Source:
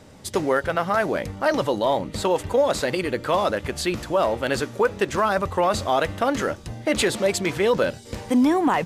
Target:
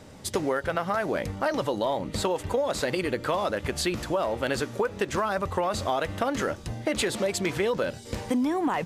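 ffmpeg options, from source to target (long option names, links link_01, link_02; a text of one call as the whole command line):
ffmpeg -i in.wav -af "acompressor=threshold=-23dB:ratio=6" out.wav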